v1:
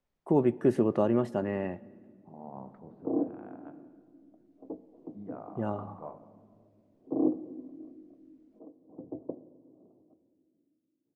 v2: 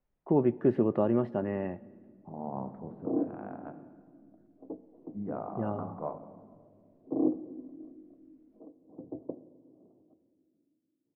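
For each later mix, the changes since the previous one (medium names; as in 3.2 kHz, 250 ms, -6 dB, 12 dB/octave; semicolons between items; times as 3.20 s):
second voice +8.0 dB; master: add distance through air 370 m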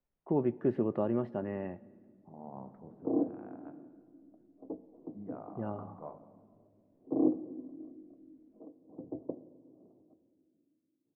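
first voice -4.5 dB; second voice -9.0 dB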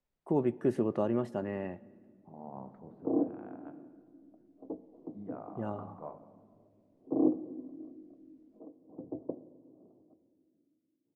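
master: remove distance through air 370 m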